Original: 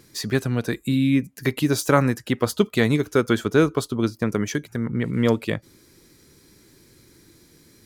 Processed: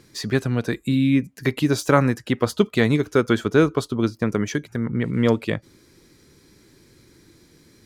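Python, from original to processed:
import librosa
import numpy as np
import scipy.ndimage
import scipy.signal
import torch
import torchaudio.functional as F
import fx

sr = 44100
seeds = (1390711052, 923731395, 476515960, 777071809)

y = fx.high_shelf(x, sr, hz=9500.0, db=-11.0)
y = y * librosa.db_to_amplitude(1.0)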